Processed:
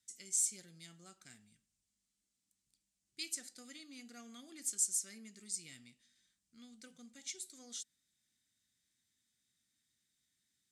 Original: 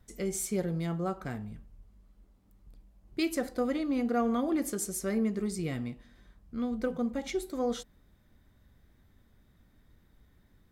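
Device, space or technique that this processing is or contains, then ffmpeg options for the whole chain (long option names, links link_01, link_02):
piezo pickup straight into a mixer: -af "lowpass=6400,aderivative,equalizer=frequency=125:width_type=o:width=1:gain=7,equalizer=frequency=250:width_type=o:width=1:gain=5,equalizer=frequency=500:width_type=o:width=1:gain=-8,equalizer=frequency=1000:width_type=o:width=1:gain=-12,equalizer=frequency=8000:width_type=o:width=1:gain=10"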